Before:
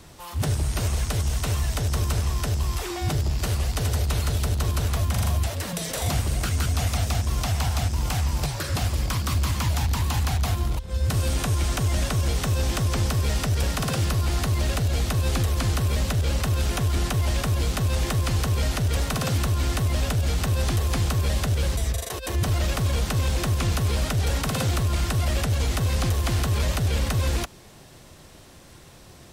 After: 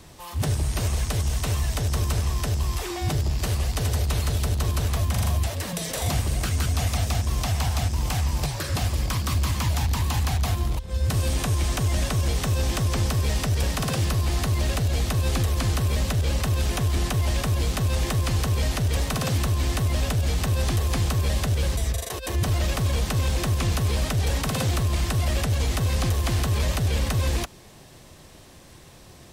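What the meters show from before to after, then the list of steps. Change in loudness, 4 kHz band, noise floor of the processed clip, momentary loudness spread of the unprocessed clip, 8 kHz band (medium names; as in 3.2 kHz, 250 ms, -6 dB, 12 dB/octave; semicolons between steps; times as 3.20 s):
0.0 dB, 0.0 dB, -47 dBFS, 2 LU, 0.0 dB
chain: band-stop 1.4 kHz, Q 17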